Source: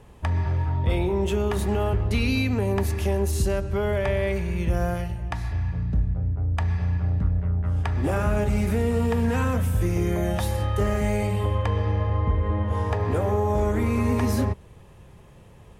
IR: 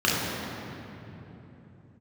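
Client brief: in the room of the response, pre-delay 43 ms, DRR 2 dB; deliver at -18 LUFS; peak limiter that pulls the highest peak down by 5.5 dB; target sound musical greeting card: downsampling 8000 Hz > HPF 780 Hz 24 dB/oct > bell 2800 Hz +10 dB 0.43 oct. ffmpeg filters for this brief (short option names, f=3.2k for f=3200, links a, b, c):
-filter_complex "[0:a]alimiter=limit=-19dB:level=0:latency=1,asplit=2[a][b];[1:a]atrim=start_sample=2205,adelay=43[c];[b][c]afir=irnorm=-1:irlink=0,volume=-19.5dB[d];[a][d]amix=inputs=2:normalize=0,aresample=8000,aresample=44100,highpass=f=780:w=0.5412,highpass=f=780:w=1.3066,equalizer=f=2.8k:t=o:w=0.43:g=10,volume=16dB"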